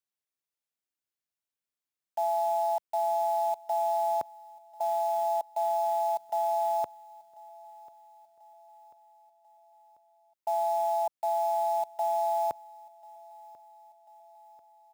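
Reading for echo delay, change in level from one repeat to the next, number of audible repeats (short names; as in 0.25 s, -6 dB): 1.041 s, -5.0 dB, 3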